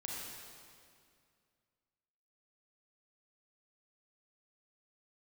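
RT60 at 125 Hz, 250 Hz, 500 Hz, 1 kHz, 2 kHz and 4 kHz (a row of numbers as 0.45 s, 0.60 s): 2.6 s, 2.5 s, 2.3 s, 2.2 s, 2.1 s, 1.9 s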